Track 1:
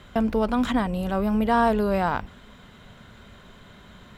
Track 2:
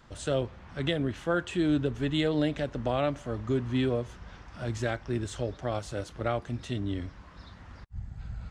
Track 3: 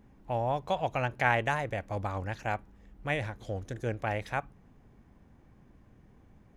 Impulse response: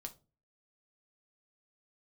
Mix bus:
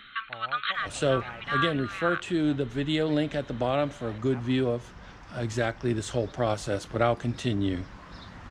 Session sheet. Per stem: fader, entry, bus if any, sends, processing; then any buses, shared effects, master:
+2.0 dB, 0.00 s, no send, brick-wall band-pass 1,100–4,300 Hz
+3.0 dB, 0.75 s, no send, no processing
−5.0 dB, 0.00 s, no send, automatic ducking −12 dB, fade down 0.30 s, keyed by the first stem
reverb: not used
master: parametric band 67 Hz −10.5 dB 0.79 octaves; speech leveller within 4 dB 2 s

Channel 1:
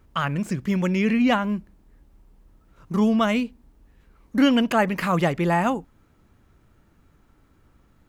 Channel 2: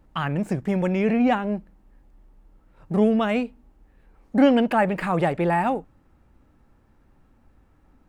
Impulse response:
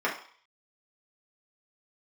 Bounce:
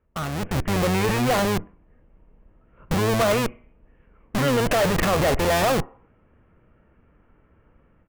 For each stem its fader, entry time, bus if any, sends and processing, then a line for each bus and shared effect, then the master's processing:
−14.5 dB, 0.00 s, send −17 dB, sub-octave generator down 1 octave, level −1 dB; Butterworth low-pass 3,000 Hz 72 dB per octave; parametric band 500 Hz +5.5 dB 0.91 octaves
−5.0 dB, 2.3 ms, no send, comparator with hysteresis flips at −30 dBFS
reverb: on, RT60 0.50 s, pre-delay 3 ms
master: automatic gain control gain up to 12.5 dB; soft clipping −16 dBFS, distortion −12 dB

